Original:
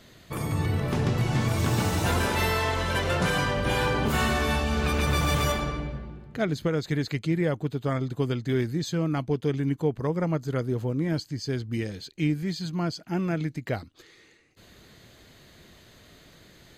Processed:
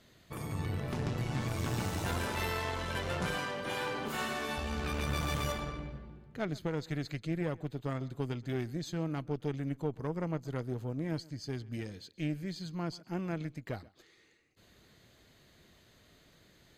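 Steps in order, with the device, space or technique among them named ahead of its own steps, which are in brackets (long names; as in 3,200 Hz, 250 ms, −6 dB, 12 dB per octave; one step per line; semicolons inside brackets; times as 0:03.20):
0:03.36–0:04.58: Bessel high-pass filter 240 Hz, order 2
rockabilly slapback (tube saturation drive 17 dB, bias 0.65; tape delay 131 ms, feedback 27%, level −21 dB, low-pass 5,100 Hz)
level −6 dB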